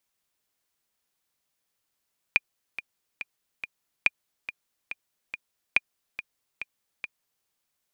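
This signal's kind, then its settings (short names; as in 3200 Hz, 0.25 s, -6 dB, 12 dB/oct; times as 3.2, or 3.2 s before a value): metronome 141 bpm, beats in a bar 4, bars 3, 2420 Hz, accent 14.5 dB -5.5 dBFS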